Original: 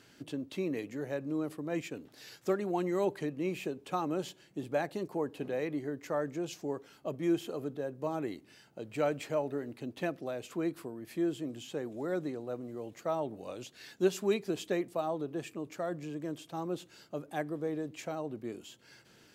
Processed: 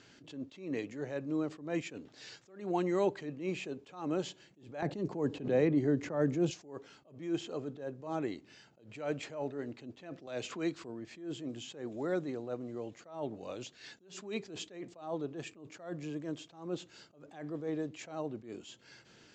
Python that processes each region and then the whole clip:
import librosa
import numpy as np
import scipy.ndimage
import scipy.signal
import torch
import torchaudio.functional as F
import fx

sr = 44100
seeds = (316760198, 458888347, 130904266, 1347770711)

y = fx.chain(x, sr, fx.low_shelf(hz=470.0, db=11.5),
    fx.band_squash(depth_pct=100), at=(4.82, 6.51))
y = fx.chain(y, sr, fx.lowpass(hz=8300.0, slope=12),
    fx.high_shelf(hz=2200.0, db=7.5),
    fx.band_squash(depth_pct=70), at=(10.27, 10.84))
y = scipy.signal.sosfilt(scipy.signal.ellip(4, 1.0, 40, 7300.0, 'lowpass', fs=sr, output='sos'), y)
y = fx.attack_slew(y, sr, db_per_s=120.0)
y = y * librosa.db_to_amplitude(1.5)